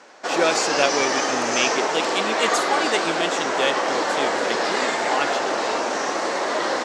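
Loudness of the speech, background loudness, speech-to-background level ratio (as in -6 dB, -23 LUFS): -26.0 LUFS, -22.5 LUFS, -3.5 dB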